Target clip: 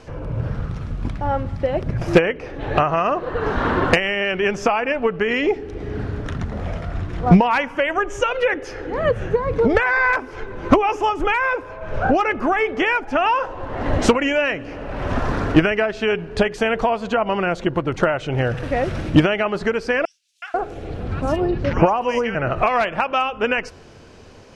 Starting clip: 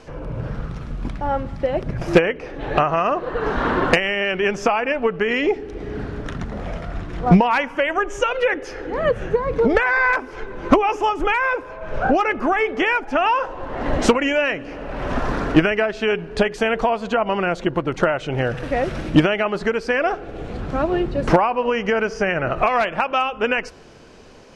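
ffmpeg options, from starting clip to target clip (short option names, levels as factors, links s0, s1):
-filter_complex "[0:a]equalizer=f=93:t=o:w=0.65:g=9,asettb=1/sr,asplit=3[s0][s1][s2];[s0]atrim=end=20.054[s3];[s1]atrim=start=20.05:end=22.35,asetpts=PTS-STARTPTS,afade=t=in:d=0.004:c=qsin,afade=t=out:st=2.296:d=0.004:c=qsin,acrossover=split=1500|4900[s4][s5][s6];[s5]adelay=370[s7];[s4]adelay=490[s8];[s8][s7][s6]amix=inputs=3:normalize=0,atrim=end_sample=101430[s9];[s2]atrim=start=22.346[s10];[s3][s9]acrossfade=d=0.004:c1=hsin:c2=qsin[s11];[s11][s10]acrossfade=d=0.004:c1=qsin:c2=hsin"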